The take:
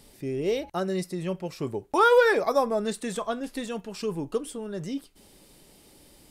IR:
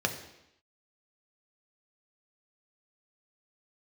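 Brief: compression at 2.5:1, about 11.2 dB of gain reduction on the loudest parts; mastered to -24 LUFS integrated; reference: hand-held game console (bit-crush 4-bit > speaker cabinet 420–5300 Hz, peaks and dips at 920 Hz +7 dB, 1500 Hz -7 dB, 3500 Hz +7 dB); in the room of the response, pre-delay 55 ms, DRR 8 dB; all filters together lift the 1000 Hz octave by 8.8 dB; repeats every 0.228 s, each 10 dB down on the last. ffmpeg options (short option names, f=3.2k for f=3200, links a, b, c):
-filter_complex "[0:a]equalizer=f=1k:t=o:g=7.5,acompressor=threshold=-29dB:ratio=2.5,aecho=1:1:228|456|684|912:0.316|0.101|0.0324|0.0104,asplit=2[a][b];[1:a]atrim=start_sample=2205,adelay=55[c];[b][c]afir=irnorm=-1:irlink=0,volume=-16.5dB[d];[a][d]amix=inputs=2:normalize=0,acrusher=bits=3:mix=0:aa=0.000001,highpass=420,equalizer=f=920:t=q:w=4:g=7,equalizer=f=1.5k:t=q:w=4:g=-7,equalizer=f=3.5k:t=q:w=4:g=7,lowpass=f=5.3k:w=0.5412,lowpass=f=5.3k:w=1.3066,volume=6dB"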